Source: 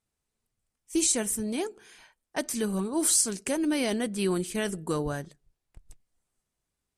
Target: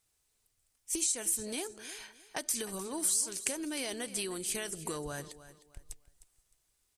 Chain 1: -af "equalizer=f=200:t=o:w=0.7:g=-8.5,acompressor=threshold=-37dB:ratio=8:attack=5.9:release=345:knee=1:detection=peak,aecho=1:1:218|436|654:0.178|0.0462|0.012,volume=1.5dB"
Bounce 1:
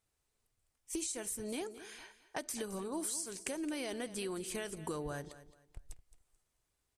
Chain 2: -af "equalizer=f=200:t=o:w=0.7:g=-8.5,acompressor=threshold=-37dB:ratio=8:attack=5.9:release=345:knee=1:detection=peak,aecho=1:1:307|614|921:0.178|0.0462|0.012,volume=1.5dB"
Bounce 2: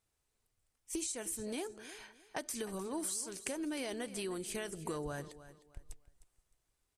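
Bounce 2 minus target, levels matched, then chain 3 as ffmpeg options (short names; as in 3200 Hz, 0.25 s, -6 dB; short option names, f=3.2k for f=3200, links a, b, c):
2000 Hz band +2.5 dB
-af "equalizer=f=200:t=o:w=0.7:g=-8.5,acompressor=threshold=-37dB:ratio=8:attack=5.9:release=345:knee=1:detection=peak,highshelf=f=2.6k:g=10,aecho=1:1:307|614|921:0.178|0.0462|0.012,volume=1.5dB"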